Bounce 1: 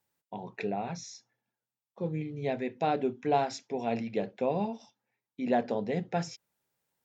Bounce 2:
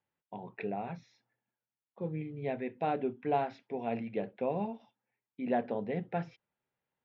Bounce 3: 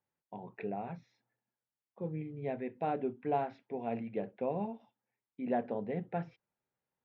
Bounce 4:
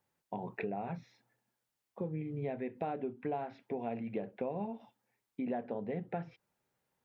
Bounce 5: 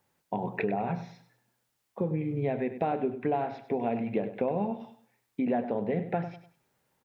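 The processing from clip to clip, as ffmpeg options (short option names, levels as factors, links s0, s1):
-af "lowpass=f=3100:w=0.5412,lowpass=f=3100:w=1.3066,volume=0.668"
-af "highshelf=f=3100:g=-10.5,volume=0.841"
-af "acompressor=threshold=0.00708:ratio=5,volume=2.51"
-af "aecho=1:1:99|198|297:0.251|0.0779|0.0241,volume=2.51"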